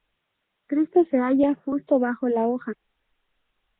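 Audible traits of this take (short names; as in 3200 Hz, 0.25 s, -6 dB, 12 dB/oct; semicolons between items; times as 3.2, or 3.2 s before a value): phasing stages 6, 2.2 Hz, lowest notch 700–1400 Hz; a quantiser's noise floor 12-bit, dither triangular; Nellymoser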